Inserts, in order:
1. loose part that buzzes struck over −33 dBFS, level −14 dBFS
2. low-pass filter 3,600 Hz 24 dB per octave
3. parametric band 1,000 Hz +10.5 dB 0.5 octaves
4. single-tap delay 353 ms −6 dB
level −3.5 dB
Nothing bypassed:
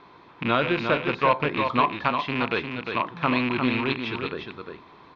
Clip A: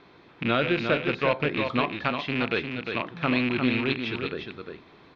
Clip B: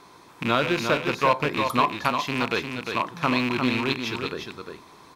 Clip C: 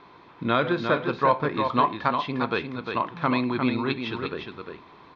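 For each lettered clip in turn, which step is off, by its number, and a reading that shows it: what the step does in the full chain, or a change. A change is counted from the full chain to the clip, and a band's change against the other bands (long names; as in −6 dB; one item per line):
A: 3, 1 kHz band −6.5 dB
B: 2, 4 kHz band +2.5 dB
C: 1, 2 kHz band −3.5 dB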